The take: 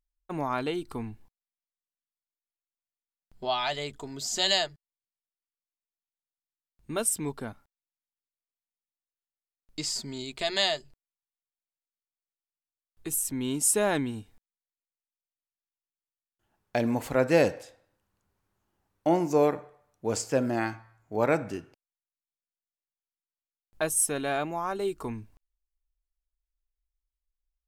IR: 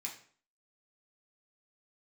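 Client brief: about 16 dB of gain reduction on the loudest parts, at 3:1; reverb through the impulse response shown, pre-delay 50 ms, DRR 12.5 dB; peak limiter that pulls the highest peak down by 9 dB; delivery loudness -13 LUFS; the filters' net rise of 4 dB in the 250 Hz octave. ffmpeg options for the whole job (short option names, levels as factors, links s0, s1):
-filter_complex "[0:a]equalizer=f=250:t=o:g=5,acompressor=threshold=0.0112:ratio=3,alimiter=level_in=1.68:limit=0.0631:level=0:latency=1,volume=0.596,asplit=2[s0][s1];[1:a]atrim=start_sample=2205,adelay=50[s2];[s1][s2]afir=irnorm=-1:irlink=0,volume=0.282[s3];[s0][s3]amix=inputs=2:normalize=0,volume=22.4"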